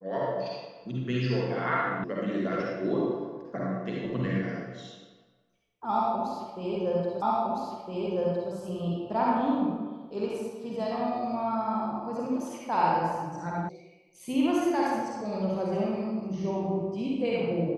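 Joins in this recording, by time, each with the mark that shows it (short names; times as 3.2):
2.04 sound cut off
7.22 repeat of the last 1.31 s
13.69 sound cut off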